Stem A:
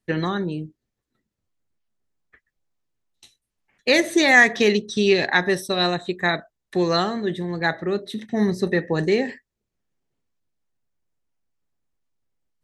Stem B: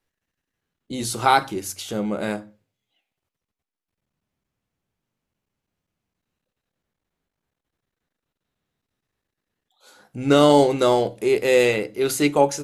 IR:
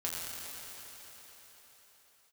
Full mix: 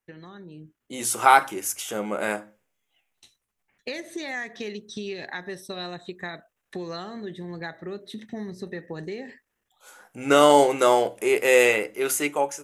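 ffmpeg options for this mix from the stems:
-filter_complex "[0:a]acompressor=threshold=-29dB:ratio=4,volume=-13.5dB[link_01];[1:a]highpass=frequency=1000:poles=1,equalizer=frequency=4200:width=2.3:gain=-14,volume=-3dB[link_02];[link_01][link_02]amix=inputs=2:normalize=0,dynaudnorm=framelen=120:gausssize=11:maxgain=9.5dB"

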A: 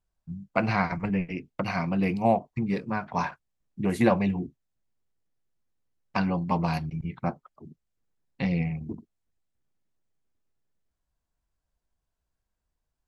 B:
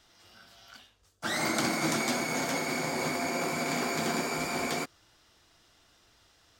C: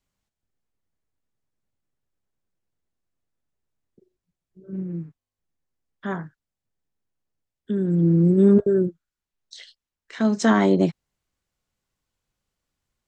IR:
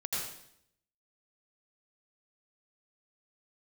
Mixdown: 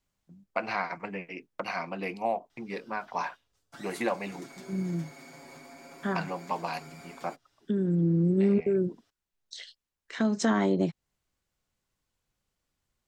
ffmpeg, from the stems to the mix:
-filter_complex "[0:a]agate=range=-11dB:threshold=-40dB:ratio=16:detection=peak,highpass=400,volume=-1.5dB[link_01];[1:a]aecho=1:1:7.2:0.65,acompressor=threshold=-35dB:ratio=6,adelay=2500,volume=-11.5dB[link_02];[2:a]volume=-0.5dB[link_03];[link_01][link_02][link_03]amix=inputs=3:normalize=0,acompressor=threshold=-27dB:ratio=2"

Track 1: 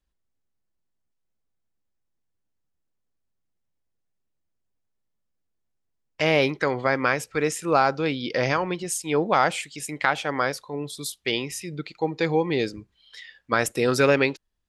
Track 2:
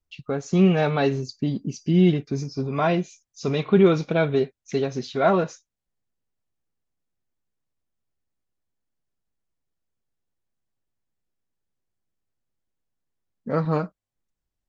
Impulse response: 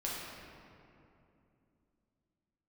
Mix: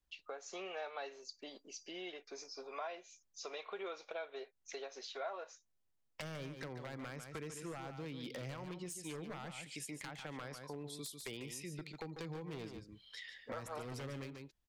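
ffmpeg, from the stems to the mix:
-filter_complex "[0:a]acrossover=split=210[link_01][link_02];[link_02]acompressor=threshold=-30dB:ratio=8[link_03];[link_01][link_03]amix=inputs=2:normalize=0,aeval=exprs='0.0596*(abs(mod(val(0)/0.0596+3,4)-2)-1)':channel_layout=same,volume=-5.5dB,asplit=2[link_04][link_05];[link_05]volume=-9dB[link_06];[1:a]highpass=frequency=530:width=0.5412,highpass=frequency=530:width=1.3066,volume=-6.5dB[link_07];[link_06]aecho=0:1:145:1[link_08];[link_04][link_07][link_08]amix=inputs=3:normalize=0,acompressor=threshold=-45dB:ratio=3"

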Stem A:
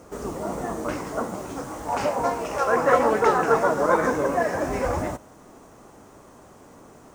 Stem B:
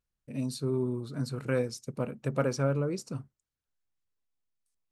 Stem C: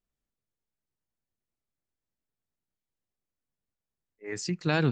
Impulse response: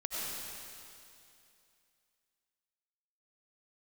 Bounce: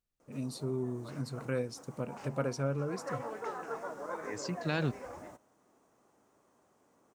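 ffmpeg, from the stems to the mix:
-filter_complex "[0:a]highpass=frequency=190:poles=1,adelay=200,volume=-19.5dB[link_01];[1:a]volume=-5dB,asplit=2[link_02][link_03];[2:a]volume=-6.5dB[link_04];[link_03]apad=whole_len=323818[link_05];[link_01][link_05]sidechaincompress=threshold=-36dB:ratio=8:attack=21:release=355[link_06];[link_06][link_02][link_04]amix=inputs=3:normalize=0"

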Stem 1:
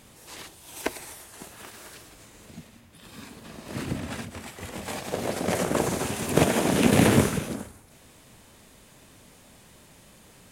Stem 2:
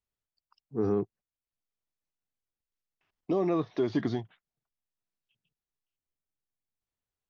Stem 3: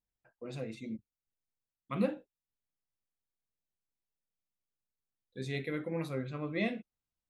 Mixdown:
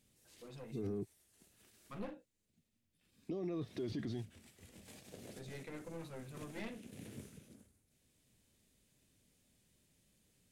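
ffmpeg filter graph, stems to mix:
ffmpeg -i stem1.wav -i stem2.wav -i stem3.wav -filter_complex "[0:a]volume=-19dB[link_01];[1:a]volume=0dB[link_02];[2:a]aeval=exprs='clip(val(0),-1,0.00944)':channel_layout=same,volume=-9dB,asplit=2[link_03][link_04];[link_04]apad=whole_len=463857[link_05];[link_01][link_05]sidechaincompress=threshold=-53dB:ratio=8:attack=16:release=1400[link_06];[link_06][link_02]amix=inputs=2:normalize=0,equalizer=frequency=980:width=0.8:gain=-13,alimiter=level_in=0.5dB:limit=-24dB:level=0:latency=1:release=371,volume=-0.5dB,volume=0dB[link_07];[link_03][link_07]amix=inputs=2:normalize=0,alimiter=level_in=9dB:limit=-24dB:level=0:latency=1:release=11,volume=-9dB" out.wav

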